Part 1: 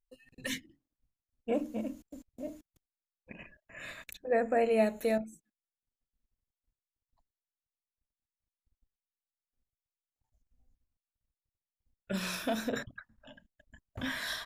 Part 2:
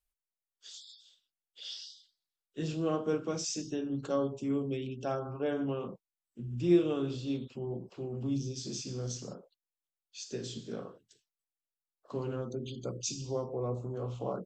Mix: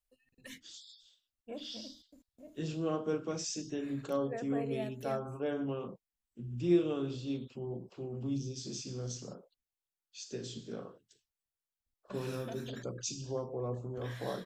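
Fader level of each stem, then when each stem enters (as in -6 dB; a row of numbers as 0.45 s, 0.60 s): -13.0 dB, -2.5 dB; 0.00 s, 0.00 s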